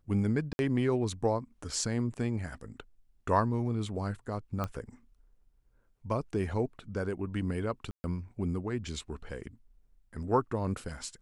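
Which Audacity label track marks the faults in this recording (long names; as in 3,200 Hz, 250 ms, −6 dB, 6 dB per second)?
0.530000	0.590000	drop-out 61 ms
4.640000	4.640000	click −20 dBFS
7.910000	8.040000	drop-out 130 ms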